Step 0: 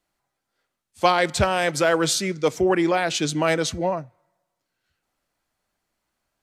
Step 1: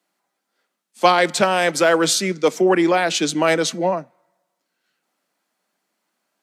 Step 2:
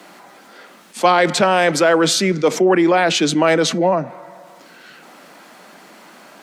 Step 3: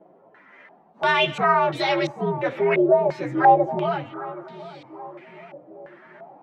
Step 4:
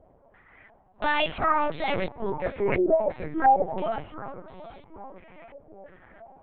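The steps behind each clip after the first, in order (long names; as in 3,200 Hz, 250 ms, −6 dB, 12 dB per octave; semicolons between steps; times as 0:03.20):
Butterworth high-pass 170 Hz 48 dB per octave; level +4 dB
high-shelf EQ 4,500 Hz −10.5 dB; envelope flattener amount 50%
partials spread apart or drawn together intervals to 122%; tape delay 776 ms, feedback 58%, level −13 dB, low-pass 1,200 Hz; low-pass on a step sequencer 2.9 Hz 590–3,900 Hz; level −6.5 dB
linear-prediction vocoder at 8 kHz pitch kept; level −4.5 dB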